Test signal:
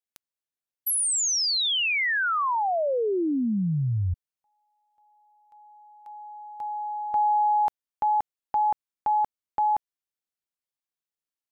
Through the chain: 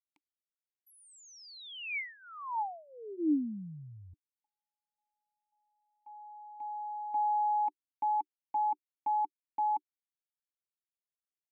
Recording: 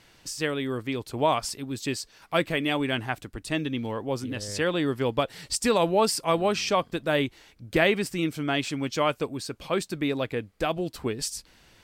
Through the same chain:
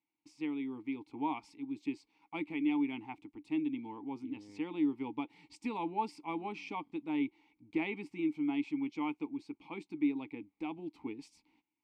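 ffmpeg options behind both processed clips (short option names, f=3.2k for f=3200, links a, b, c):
-filter_complex "[0:a]bandreject=f=370:w=12,agate=range=-20dB:threshold=-49dB:ratio=16:release=216:detection=rms,asplit=3[a][b][c];[a]bandpass=f=300:t=q:w=8,volume=0dB[d];[b]bandpass=f=870:t=q:w=8,volume=-6dB[e];[c]bandpass=f=2.24k:t=q:w=8,volume=-9dB[f];[d][e][f]amix=inputs=3:normalize=0"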